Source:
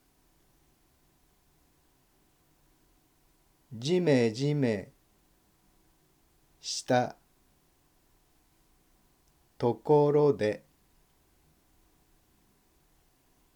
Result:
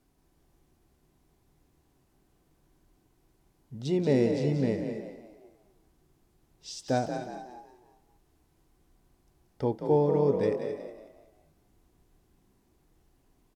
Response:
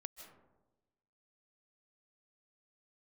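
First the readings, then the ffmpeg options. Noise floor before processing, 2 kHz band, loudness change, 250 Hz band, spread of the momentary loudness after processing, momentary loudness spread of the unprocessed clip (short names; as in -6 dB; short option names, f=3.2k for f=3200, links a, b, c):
-69 dBFS, -5.0 dB, -0.5 dB, +1.0 dB, 19 LU, 13 LU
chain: -filter_complex "[0:a]tiltshelf=f=760:g=4,asplit=6[a][b][c][d][e][f];[b]adelay=183,afreqshift=40,volume=-8dB[g];[c]adelay=366,afreqshift=80,volume=-16dB[h];[d]adelay=549,afreqshift=120,volume=-23.9dB[i];[e]adelay=732,afreqshift=160,volume=-31.9dB[j];[f]adelay=915,afreqshift=200,volume=-39.8dB[k];[a][g][h][i][j][k]amix=inputs=6:normalize=0[l];[1:a]atrim=start_sample=2205,afade=t=out:st=0.21:d=0.01,atrim=end_sample=9702,asetrate=27342,aresample=44100[m];[l][m]afir=irnorm=-1:irlink=0"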